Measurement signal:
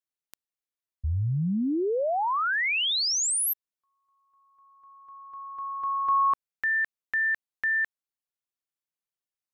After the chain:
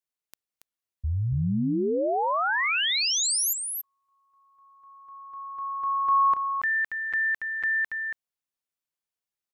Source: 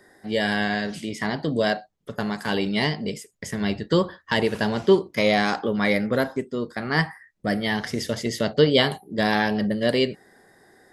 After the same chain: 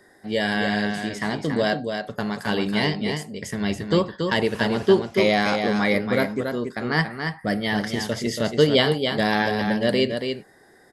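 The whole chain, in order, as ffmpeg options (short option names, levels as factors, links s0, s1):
-af "aecho=1:1:280:0.501"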